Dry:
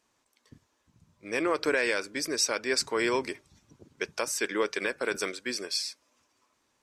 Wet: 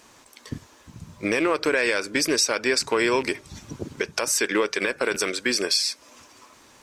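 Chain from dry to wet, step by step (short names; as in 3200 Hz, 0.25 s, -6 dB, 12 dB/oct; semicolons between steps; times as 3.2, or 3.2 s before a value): rattling part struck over -42 dBFS, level -31 dBFS; compressor 4:1, threshold -42 dBFS, peak gain reduction 17 dB; maximiser +29.5 dB; gain -9 dB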